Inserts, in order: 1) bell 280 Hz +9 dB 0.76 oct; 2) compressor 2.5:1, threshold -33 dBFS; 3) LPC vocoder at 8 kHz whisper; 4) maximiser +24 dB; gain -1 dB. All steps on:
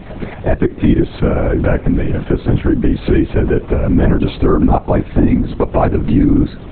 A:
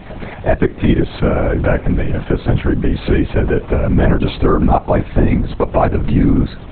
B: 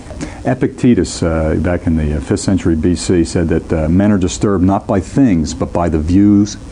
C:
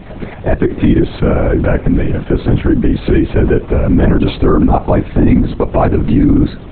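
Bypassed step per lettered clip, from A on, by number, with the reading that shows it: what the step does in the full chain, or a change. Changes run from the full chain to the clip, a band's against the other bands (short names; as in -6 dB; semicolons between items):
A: 1, 250 Hz band -4.5 dB; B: 3, 4 kHz band +6.5 dB; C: 2, mean gain reduction 4.5 dB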